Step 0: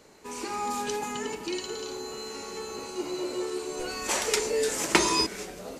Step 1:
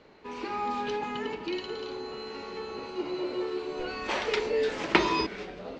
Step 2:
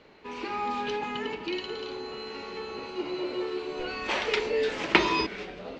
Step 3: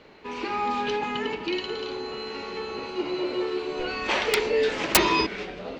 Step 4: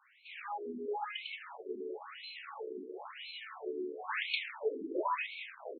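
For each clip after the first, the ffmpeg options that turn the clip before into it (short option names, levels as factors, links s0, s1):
-af "lowpass=f=3900:w=0.5412,lowpass=f=3900:w=1.3066"
-af "equalizer=f=2700:w=1.2:g=4"
-af "aeval=exprs='(mod(4.22*val(0)+1,2)-1)/4.22':c=same,volume=1.58"
-filter_complex "[0:a]acrossover=split=160|720|2200[s0][s1][s2][s3];[s1]acrusher=bits=5:mix=0:aa=0.000001[s4];[s0][s4][s2][s3]amix=inputs=4:normalize=0,aecho=1:1:257:0.141,afftfilt=real='re*between(b*sr/1024,300*pow(3100/300,0.5+0.5*sin(2*PI*0.98*pts/sr))/1.41,300*pow(3100/300,0.5+0.5*sin(2*PI*0.98*pts/sr))*1.41)':imag='im*between(b*sr/1024,300*pow(3100/300,0.5+0.5*sin(2*PI*0.98*pts/sr))/1.41,300*pow(3100/300,0.5+0.5*sin(2*PI*0.98*pts/sr))*1.41)':win_size=1024:overlap=0.75,volume=0.501"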